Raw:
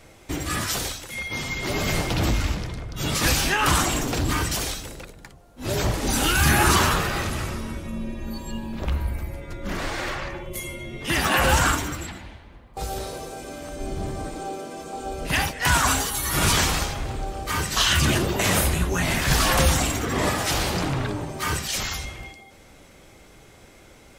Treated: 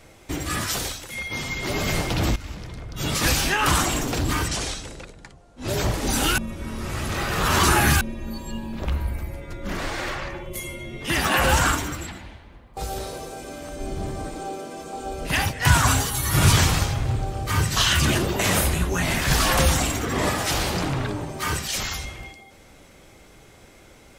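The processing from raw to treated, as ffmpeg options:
ffmpeg -i in.wav -filter_complex "[0:a]asettb=1/sr,asplit=3[link_01][link_02][link_03];[link_01]atrim=end=4.484[link_04];[link_02]atrim=start=4.48:end=5.68,asetpts=PTS-STARTPTS,afade=type=in:duration=0.004:curve=qsin,afade=type=out:start_time=1.196:duration=0.004:curve=qsin,lowpass=frequency=9200:width=0.5412,lowpass=frequency=9200:width=1.3066[link_05];[link_03]atrim=start=5.676[link_06];[link_04][link_05]acrossfade=duration=0.004:curve1=hsin:curve2=qsin[link_07];[link_07][link_06]acrossfade=duration=0.004:curve1=qsin:curve2=hsin,asettb=1/sr,asplit=3[link_08][link_09][link_10];[link_08]atrim=end=15.464[link_11];[link_09]atrim=start=15.46:end=17.89,asetpts=PTS-STARTPTS,afade=type=in:duration=0.004:curve=qsin,afade=type=out:start_time=2.426:duration=0.004:curve=qsin,equalizer=frequency=110:width=1.5:gain=12.5[link_12];[link_10]atrim=start=17.886[link_13];[link_11][link_12]acrossfade=duration=0.004:curve1=hsin:curve2=qsin[link_14];[link_14][link_13]acrossfade=duration=0.004:curve1=qsin:curve2=hsin,asplit=4[link_15][link_16][link_17][link_18];[link_15]atrim=end=2.36,asetpts=PTS-STARTPTS,afade=type=out:start_time=2.356:duration=0.004:curve=hsin:silence=0.149624[link_19];[link_16]atrim=start=2.36:end=6.382,asetpts=PTS-STARTPTS,afade=type=in:duration=0.65:silence=0.149624[link_20];[link_17]atrim=start=6.378:end=8.012,asetpts=PTS-STARTPTS,areverse[link_21];[link_18]atrim=start=8.008[link_22];[link_19][link_20]concat=n=2:v=0:a=1[link_23];[link_23][link_21]acrossfade=duration=0.004:curve1=hsin:curve2=hsin[link_24];[link_24][link_22]acrossfade=duration=0.004:curve1=hsin:curve2=hsin" out.wav

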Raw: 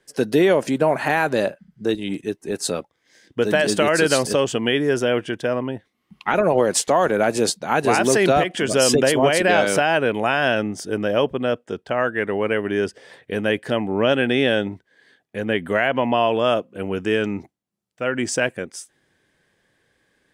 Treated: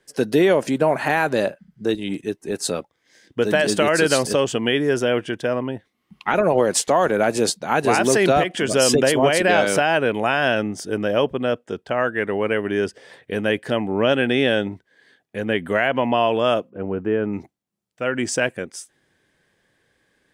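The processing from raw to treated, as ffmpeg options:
ffmpeg -i in.wav -filter_complex "[0:a]asplit=3[link_01][link_02][link_03];[link_01]afade=type=out:start_time=16.69:duration=0.02[link_04];[link_02]lowpass=1200,afade=type=in:start_time=16.69:duration=0.02,afade=type=out:start_time=17.32:duration=0.02[link_05];[link_03]afade=type=in:start_time=17.32:duration=0.02[link_06];[link_04][link_05][link_06]amix=inputs=3:normalize=0" out.wav

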